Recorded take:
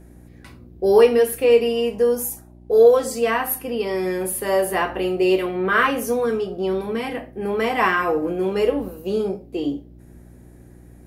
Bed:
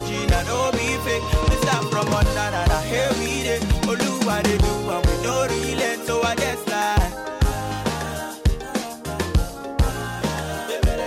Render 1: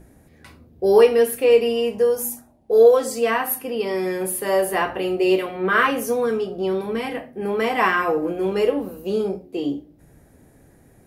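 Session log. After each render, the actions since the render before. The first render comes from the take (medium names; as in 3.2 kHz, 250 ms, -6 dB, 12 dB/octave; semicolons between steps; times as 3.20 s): de-hum 60 Hz, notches 6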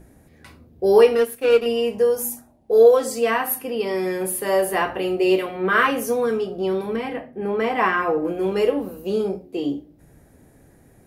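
1.15–1.66 s: power-law waveshaper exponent 1.4; 6.96–8.25 s: treble shelf 4 kHz -11.5 dB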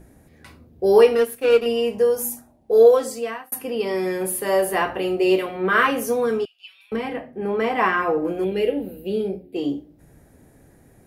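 2.92–3.52 s: fade out; 6.45–6.92 s: ladder high-pass 2.5 kHz, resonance 80%; 8.44–9.56 s: static phaser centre 2.7 kHz, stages 4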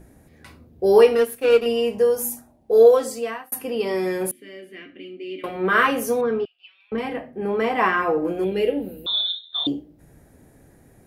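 4.31–5.44 s: vowel filter i; 6.21–6.98 s: distance through air 300 m; 9.06–9.67 s: frequency inversion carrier 3.9 kHz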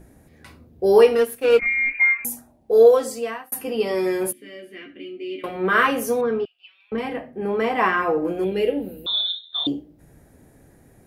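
1.59–2.25 s: frequency inversion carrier 2.6 kHz; 3.54–5.39 s: doubling 14 ms -6 dB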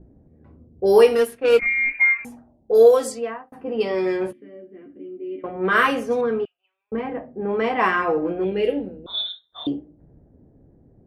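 level-controlled noise filter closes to 460 Hz, open at -14 dBFS; dynamic bell 8.4 kHz, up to +4 dB, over -43 dBFS, Q 0.72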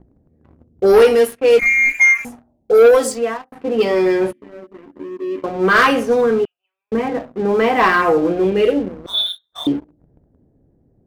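waveshaping leveller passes 2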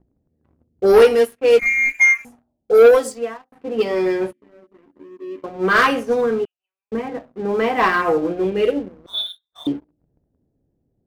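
upward expansion 1.5:1, over -30 dBFS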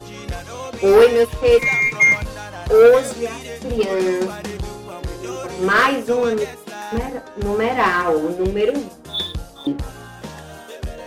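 add bed -9.5 dB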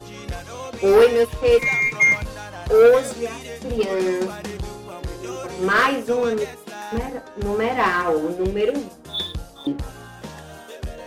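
trim -2.5 dB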